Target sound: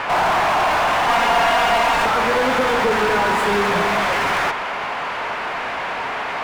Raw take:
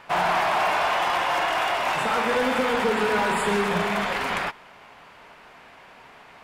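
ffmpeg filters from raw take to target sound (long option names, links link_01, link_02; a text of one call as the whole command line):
ffmpeg -i in.wav -filter_complex "[0:a]asplit=2[link_01][link_02];[link_02]highpass=frequency=720:poles=1,volume=32dB,asoftclip=type=tanh:threshold=-16dB[link_03];[link_01][link_03]amix=inputs=2:normalize=0,lowpass=frequency=1700:poles=1,volume=-6dB,asettb=1/sr,asplit=3[link_04][link_05][link_06];[link_04]atrim=end=1.084[link_07];[link_05]atrim=start=1.08:end=2.06,asetpts=PTS-STARTPTS,afade=type=in:duration=0.004:curve=qsin,afade=type=out:start_time=0.976:duration=0.004:curve=qsin,aecho=1:1:4.3:0.73,atrim=end_sample=43218[link_08];[link_06]atrim=start=2.056[link_09];[link_07][link_08]acrossfade=duration=0.004:curve1=hsin:curve2=qsin[link_10];[link_10][link_09]acrossfade=duration=0.004:curve1=qsin:curve2=hsin,volume=4dB" out.wav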